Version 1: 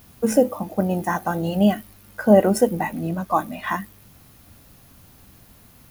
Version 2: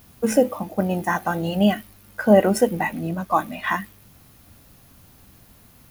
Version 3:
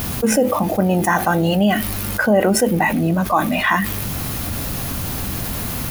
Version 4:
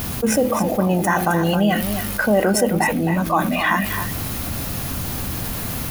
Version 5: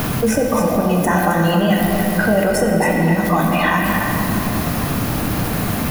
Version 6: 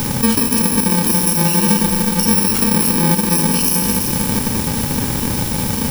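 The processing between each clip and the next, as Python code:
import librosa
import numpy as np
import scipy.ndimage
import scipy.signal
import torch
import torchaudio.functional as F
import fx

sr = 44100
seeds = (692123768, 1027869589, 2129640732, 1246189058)

y1 = fx.dynamic_eq(x, sr, hz=2400.0, q=0.76, threshold_db=-39.0, ratio=4.0, max_db=6)
y1 = y1 * librosa.db_to_amplitude(-1.0)
y2 = fx.env_flatten(y1, sr, amount_pct=70)
y2 = y2 * librosa.db_to_amplitude(-2.5)
y3 = y2 + 10.0 ** (-8.5 / 20.0) * np.pad(y2, (int(265 * sr / 1000.0), 0))[:len(y2)]
y3 = y3 * librosa.db_to_amplitude(-2.0)
y4 = fx.room_shoebox(y3, sr, seeds[0], volume_m3=190.0, walls='hard', distance_m=0.44)
y4 = fx.band_squash(y4, sr, depth_pct=70)
y4 = y4 * librosa.db_to_amplitude(-1.0)
y5 = fx.bit_reversed(y4, sr, seeds[1], block=64)
y5 = fx.small_body(y5, sr, hz=(240.0, 850.0, 3000.0), ring_ms=45, db=6)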